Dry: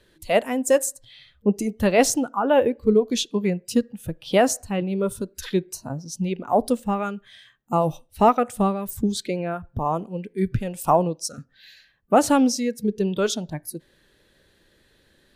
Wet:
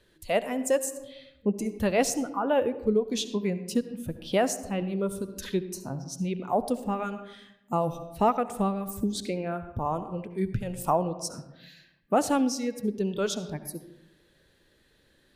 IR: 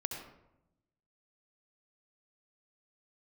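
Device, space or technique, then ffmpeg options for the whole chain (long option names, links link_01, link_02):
compressed reverb return: -filter_complex "[0:a]asplit=2[link_01][link_02];[1:a]atrim=start_sample=2205[link_03];[link_02][link_03]afir=irnorm=-1:irlink=0,acompressor=threshold=-22dB:ratio=6,volume=-3dB[link_04];[link_01][link_04]amix=inputs=2:normalize=0,volume=-8.5dB"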